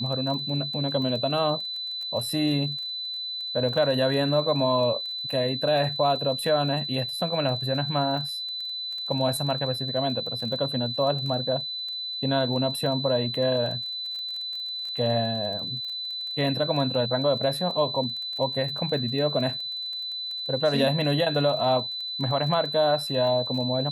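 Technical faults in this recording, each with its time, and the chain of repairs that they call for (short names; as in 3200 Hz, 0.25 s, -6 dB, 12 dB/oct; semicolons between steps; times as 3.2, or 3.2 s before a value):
crackle 20/s -33 dBFS
tone 4000 Hz -30 dBFS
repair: de-click; notch 4000 Hz, Q 30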